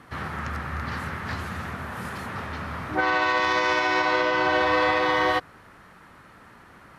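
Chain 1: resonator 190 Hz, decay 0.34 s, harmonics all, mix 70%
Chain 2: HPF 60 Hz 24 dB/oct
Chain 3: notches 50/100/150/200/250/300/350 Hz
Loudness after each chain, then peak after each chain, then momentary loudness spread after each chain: -33.0, -24.5, -25.0 LUFS; -18.0, -11.0, -11.5 dBFS; 12, 12, 13 LU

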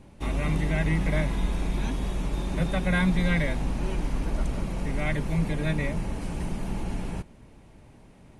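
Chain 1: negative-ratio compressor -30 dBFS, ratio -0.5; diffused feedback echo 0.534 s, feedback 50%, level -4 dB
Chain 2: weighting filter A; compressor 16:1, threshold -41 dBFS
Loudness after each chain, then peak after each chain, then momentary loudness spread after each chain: -32.5, -44.5 LUFS; -14.5, -30.5 dBFS; 8, 7 LU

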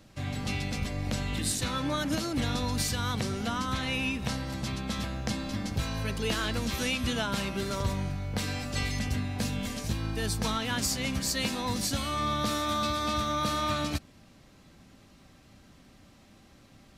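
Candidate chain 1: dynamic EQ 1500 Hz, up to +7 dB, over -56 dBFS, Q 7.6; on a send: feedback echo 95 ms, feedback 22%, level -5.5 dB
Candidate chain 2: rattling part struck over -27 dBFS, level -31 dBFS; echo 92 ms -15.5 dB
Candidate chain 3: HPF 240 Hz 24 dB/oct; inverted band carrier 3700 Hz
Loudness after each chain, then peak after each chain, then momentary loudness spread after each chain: -29.5, -30.5, -31.5 LUFS; -14.0, -15.5, -17.0 dBFS; 5, 4, 8 LU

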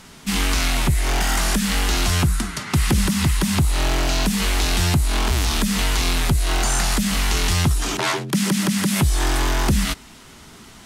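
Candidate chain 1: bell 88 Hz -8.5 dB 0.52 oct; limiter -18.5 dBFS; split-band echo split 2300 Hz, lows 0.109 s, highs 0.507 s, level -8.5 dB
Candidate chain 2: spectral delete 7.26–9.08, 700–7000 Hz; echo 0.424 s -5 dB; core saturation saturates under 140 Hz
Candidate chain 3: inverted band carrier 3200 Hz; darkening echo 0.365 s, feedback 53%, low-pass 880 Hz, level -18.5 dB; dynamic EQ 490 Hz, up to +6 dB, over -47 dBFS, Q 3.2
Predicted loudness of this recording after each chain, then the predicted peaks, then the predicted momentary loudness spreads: -26.5, -21.5, -15.0 LUFS; -15.0, -7.5, -7.5 dBFS; 2, 4, 4 LU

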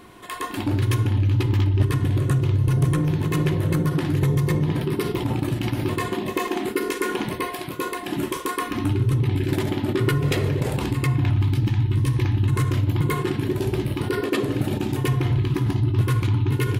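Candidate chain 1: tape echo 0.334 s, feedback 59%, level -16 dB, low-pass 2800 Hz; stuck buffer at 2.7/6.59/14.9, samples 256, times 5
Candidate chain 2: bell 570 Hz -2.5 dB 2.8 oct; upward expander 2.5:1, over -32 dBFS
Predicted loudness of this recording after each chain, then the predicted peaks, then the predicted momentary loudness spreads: -23.0, -31.0 LUFS; -11.5, -12.0 dBFS; 6, 16 LU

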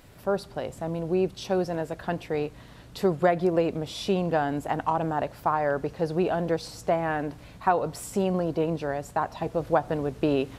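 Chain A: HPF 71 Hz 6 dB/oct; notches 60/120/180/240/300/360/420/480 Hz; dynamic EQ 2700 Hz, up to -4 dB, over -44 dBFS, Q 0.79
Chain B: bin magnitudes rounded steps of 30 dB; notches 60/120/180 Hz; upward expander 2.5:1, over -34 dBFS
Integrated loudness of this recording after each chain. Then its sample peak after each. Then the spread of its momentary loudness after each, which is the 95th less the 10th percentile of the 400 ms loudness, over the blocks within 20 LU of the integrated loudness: -28.5, -35.0 LUFS; -9.5, -9.5 dBFS; 7, 16 LU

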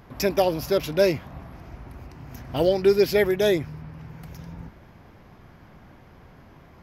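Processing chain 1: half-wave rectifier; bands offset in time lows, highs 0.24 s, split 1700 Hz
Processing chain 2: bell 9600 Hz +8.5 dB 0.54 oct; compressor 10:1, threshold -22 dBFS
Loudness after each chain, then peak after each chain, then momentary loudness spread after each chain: -27.5, -29.5 LUFS; -8.0, -13.0 dBFS; 22, 16 LU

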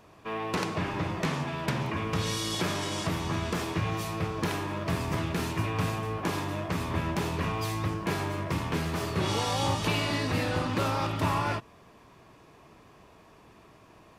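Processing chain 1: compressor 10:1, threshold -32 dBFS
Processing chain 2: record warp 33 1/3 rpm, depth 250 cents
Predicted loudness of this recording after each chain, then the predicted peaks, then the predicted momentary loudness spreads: -36.5, -30.5 LUFS; -20.0, -13.5 dBFS; 20, 4 LU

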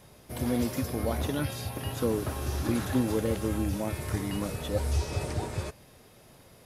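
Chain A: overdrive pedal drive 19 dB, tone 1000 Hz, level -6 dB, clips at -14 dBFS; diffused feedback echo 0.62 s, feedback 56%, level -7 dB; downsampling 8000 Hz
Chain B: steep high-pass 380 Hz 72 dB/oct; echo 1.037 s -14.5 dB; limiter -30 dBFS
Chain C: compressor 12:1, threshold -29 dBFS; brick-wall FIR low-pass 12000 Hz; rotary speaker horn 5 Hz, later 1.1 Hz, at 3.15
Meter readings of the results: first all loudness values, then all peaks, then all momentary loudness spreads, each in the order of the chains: -28.0, -39.0, -37.0 LUFS; -13.5, -30.0, -21.5 dBFS; 9, 8, 4 LU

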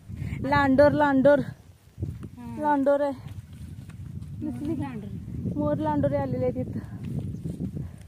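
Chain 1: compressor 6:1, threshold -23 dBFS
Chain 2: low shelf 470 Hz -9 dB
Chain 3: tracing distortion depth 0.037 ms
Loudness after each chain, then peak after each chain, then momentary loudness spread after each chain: -30.5, -28.0, -25.5 LUFS; -14.5, -11.5, -6.5 dBFS; 14, 21, 20 LU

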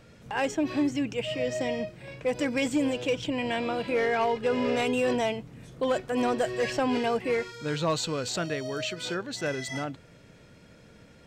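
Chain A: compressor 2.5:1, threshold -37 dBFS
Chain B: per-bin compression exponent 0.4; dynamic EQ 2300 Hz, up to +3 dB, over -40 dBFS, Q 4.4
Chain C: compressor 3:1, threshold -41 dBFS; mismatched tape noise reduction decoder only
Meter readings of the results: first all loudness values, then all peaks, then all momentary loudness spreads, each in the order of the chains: -37.0, -23.0, -40.5 LUFS; -25.0, -9.0, -28.5 dBFS; 10, 7, 9 LU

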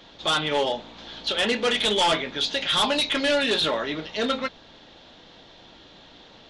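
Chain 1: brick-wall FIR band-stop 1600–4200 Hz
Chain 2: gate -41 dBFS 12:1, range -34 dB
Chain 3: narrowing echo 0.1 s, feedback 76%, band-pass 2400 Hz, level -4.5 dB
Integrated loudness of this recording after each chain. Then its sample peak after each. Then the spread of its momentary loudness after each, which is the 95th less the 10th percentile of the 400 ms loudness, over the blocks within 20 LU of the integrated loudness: -27.0, -23.5, -22.0 LUFS; -13.0, -14.5, -10.5 dBFS; 9, 9, 11 LU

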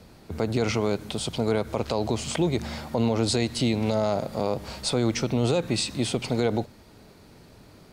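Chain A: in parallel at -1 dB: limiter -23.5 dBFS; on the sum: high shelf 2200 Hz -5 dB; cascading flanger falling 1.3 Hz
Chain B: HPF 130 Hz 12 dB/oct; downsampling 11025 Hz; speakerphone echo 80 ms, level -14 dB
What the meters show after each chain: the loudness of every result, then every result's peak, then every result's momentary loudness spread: -29.5, -27.0 LUFS; -16.0, -12.5 dBFS; 5, 6 LU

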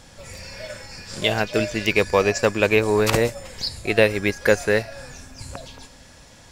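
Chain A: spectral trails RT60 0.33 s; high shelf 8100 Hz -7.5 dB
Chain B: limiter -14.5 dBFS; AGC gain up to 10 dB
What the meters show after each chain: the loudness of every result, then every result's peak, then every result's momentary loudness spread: -20.0, -17.5 LUFS; -2.5, -5.0 dBFS; 19, 18 LU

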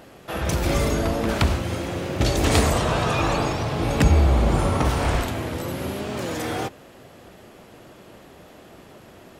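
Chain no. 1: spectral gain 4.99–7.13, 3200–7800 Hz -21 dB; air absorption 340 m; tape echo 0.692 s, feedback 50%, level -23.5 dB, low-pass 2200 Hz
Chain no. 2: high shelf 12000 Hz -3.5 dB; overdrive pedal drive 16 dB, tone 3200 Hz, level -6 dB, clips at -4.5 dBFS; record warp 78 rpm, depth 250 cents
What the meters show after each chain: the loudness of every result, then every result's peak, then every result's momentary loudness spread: -24.0, -19.5 LUFS; -6.0, -6.0 dBFS; 11, 8 LU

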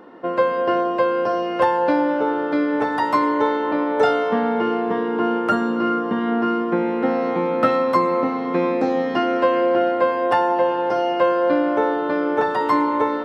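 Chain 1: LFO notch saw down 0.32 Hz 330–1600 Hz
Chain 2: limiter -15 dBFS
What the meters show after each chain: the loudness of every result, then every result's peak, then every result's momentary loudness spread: -22.0, -23.0 LUFS; -5.5, -15.0 dBFS; 4, 1 LU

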